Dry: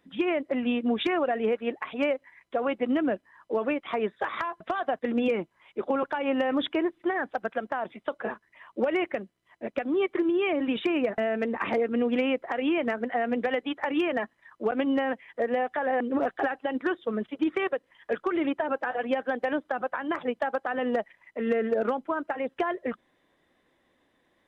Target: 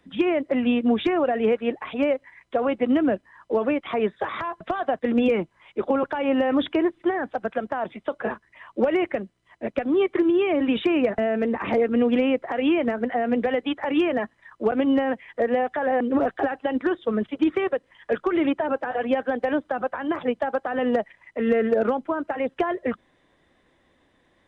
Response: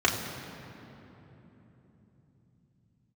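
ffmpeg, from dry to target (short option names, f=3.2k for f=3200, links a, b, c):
-filter_complex "[0:a]acrossover=split=130|760[a][b][c];[a]acontrast=82[d];[c]alimiter=level_in=6dB:limit=-24dB:level=0:latency=1:release=16,volume=-6dB[e];[d][b][e]amix=inputs=3:normalize=0,aresample=22050,aresample=44100,volume=5dB"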